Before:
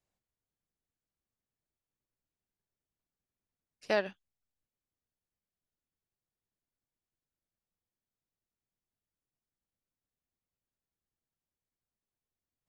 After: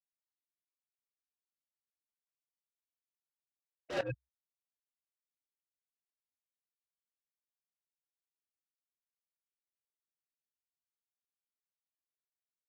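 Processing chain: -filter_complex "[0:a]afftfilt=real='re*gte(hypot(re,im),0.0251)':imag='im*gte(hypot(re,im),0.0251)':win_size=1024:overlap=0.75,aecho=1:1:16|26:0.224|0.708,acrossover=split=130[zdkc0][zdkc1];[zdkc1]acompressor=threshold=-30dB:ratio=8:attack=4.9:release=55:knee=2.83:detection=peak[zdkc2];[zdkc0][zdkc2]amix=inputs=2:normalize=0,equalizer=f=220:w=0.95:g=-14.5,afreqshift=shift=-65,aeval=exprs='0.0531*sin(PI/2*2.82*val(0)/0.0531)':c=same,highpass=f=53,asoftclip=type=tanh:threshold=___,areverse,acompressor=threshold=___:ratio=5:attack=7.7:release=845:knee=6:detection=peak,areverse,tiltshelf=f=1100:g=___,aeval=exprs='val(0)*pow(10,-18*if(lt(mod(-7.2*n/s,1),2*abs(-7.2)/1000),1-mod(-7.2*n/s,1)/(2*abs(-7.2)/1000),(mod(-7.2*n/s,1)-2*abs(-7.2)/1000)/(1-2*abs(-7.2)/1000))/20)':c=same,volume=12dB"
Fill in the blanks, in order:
-25.5dB, -42dB, 3.5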